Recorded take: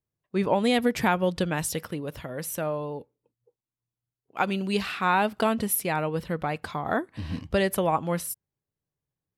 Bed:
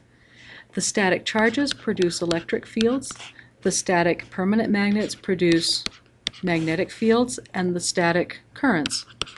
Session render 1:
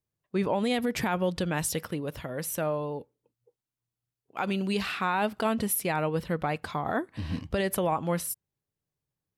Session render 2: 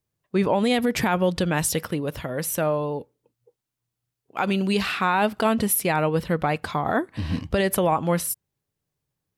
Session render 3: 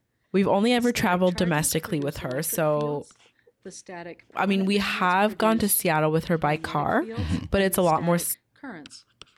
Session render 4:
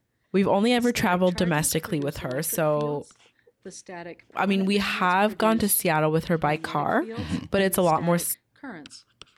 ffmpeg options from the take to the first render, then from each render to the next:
-af "alimiter=limit=0.126:level=0:latency=1:release=52"
-af "volume=2"
-filter_complex "[1:a]volume=0.119[s0];[0:a][s0]amix=inputs=2:normalize=0"
-filter_complex "[0:a]asettb=1/sr,asplit=3[s0][s1][s2];[s0]atrim=end=6.494[s3];[s1]atrim=start=6.49:end=7.59,asetpts=PTS-STARTPTS,afade=t=in:d=0.004:c=qsin,afade=t=out:st=1.096:d=0.004:c=qsin,highpass=130[s4];[s2]atrim=start=7.586[s5];[s3][s4]acrossfade=d=0.004:c1=hsin:c2=qsin[s6];[s6][s5]acrossfade=d=0.004:c1=qsin:c2=hsin"

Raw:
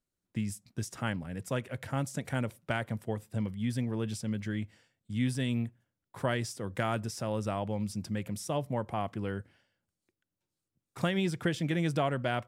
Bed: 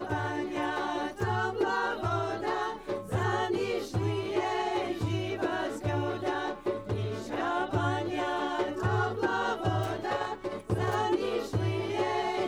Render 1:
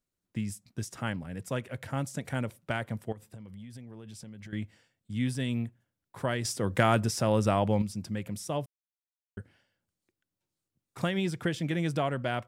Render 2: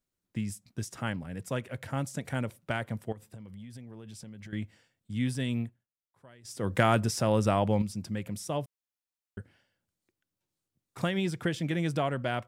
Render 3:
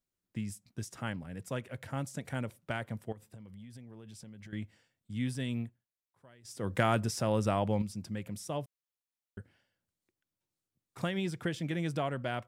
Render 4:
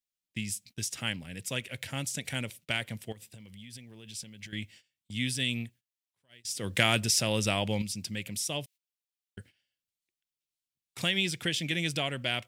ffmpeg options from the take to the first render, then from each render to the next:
-filter_complex "[0:a]asettb=1/sr,asplit=3[s0][s1][s2];[s0]atrim=end=3.124[s3];[s1]atrim=start=3.12:end=4.53,asetpts=PTS-STARTPTS,afade=t=in:d=0.004:c=qsin,afade=t=out:st=1.406:d=0.004:c=qsin,acompressor=threshold=0.00891:ratio=16:attack=3.2:release=140:knee=1:detection=peak[s4];[s2]atrim=start=4.526[s5];[s3][s4]acrossfade=d=0.004:c1=hsin:c2=qsin[s6];[s6][s5]acrossfade=d=0.004:c1=qsin:c2=hsin,asplit=5[s7][s8][s9][s10][s11];[s7]atrim=end=6.452[s12];[s8]atrim=start=6.448:end=7.822,asetpts=PTS-STARTPTS,volume=2.37[s13];[s9]atrim=start=7.818:end=8.66,asetpts=PTS-STARTPTS,afade=t=out:st=0.838:d=0.004:c=hsin[s14];[s10]atrim=start=8.66:end=9.37,asetpts=PTS-STARTPTS,volume=0[s15];[s11]atrim=start=9.37,asetpts=PTS-STARTPTS,afade=t=in:d=0.004:c=hsin[s16];[s12][s13]acrossfade=d=0.004:c1=hsin:c2=hsin[s17];[s14][s15][s16]concat=n=3:v=0:a=1[s18];[s17][s18]acrossfade=d=0.004:c1=hsin:c2=hsin"
-filter_complex "[0:a]asplit=3[s0][s1][s2];[s0]atrim=end=5.87,asetpts=PTS-STARTPTS,afade=t=out:st=5.61:d=0.26:silence=0.0630957[s3];[s1]atrim=start=5.87:end=6.43,asetpts=PTS-STARTPTS,volume=0.0631[s4];[s2]atrim=start=6.43,asetpts=PTS-STARTPTS,afade=t=in:d=0.26:silence=0.0630957[s5];[s3][s4][s5]concat=n=3:v=0:a=1"
-af "volume=0.631"
-af "highshelf=f=1800:t=q:w=1.5:g=12.5,agate=range=0.178:threshold=0.00224:ratio=16:detection=peak"

